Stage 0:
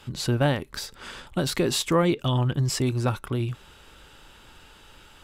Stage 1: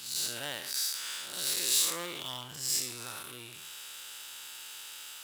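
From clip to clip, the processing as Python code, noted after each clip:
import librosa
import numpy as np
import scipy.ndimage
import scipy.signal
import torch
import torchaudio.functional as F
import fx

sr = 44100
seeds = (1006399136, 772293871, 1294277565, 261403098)

y = fx.spec_blur(x, sr, span_ms=189.0)
y = fx.power_curve(y, sr, exponent=0.7)
y = np.diff(y, prepend=0.0)
y = F.gain(torch.from_numpy(y), 5.0).numpy()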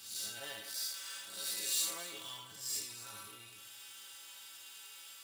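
y = fx.stiff_resonator(x, sr, f0_hz=100.0, decay_s=0.26, stiffness=0.008)
y = fx.echo_feedback(y, sr, ms=246, feedback_pct=46, wet_db=-15.5)
y = F.gain(torch.from_numpy(y), 1.5).numpy()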